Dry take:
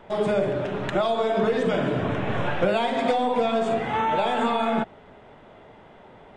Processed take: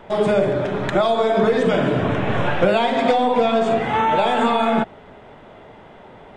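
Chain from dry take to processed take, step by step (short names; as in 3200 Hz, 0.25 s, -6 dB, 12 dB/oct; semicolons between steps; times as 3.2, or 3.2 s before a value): 0.45–1.61 notch 2800 Hz, Q 9.7; 2.75–3.81 LPF 7900 Hz 12 dB/oct; gain +5.5 dB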